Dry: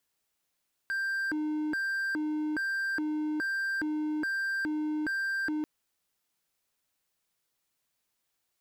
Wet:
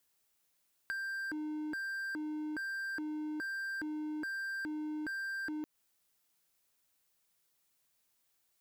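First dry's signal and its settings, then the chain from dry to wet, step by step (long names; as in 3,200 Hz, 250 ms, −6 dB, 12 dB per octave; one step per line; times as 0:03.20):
siren hi-lo 305–1,580 Hz 1.2 per second triangle −26.5 dBFS 4.74 s
high-shelf EQ 7,400 Hz +5.5 dB
downward compressor, threshold −37 dBFS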